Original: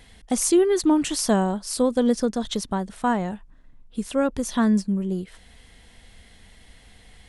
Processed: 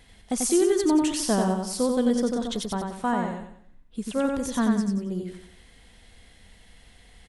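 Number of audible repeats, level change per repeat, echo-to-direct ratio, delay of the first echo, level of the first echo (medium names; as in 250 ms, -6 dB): 4, -8.5 dB, -3.0 dB, 91 ms, -3.5 dB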